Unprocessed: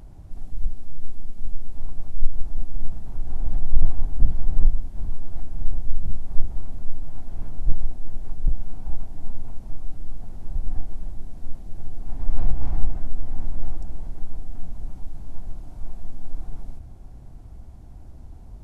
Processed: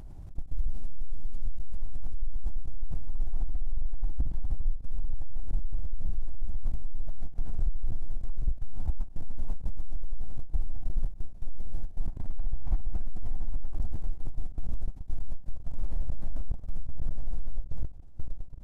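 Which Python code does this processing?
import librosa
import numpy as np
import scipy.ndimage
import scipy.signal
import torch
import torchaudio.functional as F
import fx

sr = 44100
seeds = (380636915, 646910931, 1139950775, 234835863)

y = fx.low_shelf(x, sr, hz=75.0, db=5.0)
y = fx.echo_pitch(y, sr, ms=289, semitones=-4, count=3, db_per_echo=-6.0)
y = 10.0 ** (-3.5 / 20.0) * np.tanh(y / 10.0 ** (-3.5 / 20.0))
y = fx.level_steps(y, sr, step_db=22)
y = fx.end_taper(y, sr, db_per_s=230.0)
y = y * 10.0 ** (2.5 / 20.0)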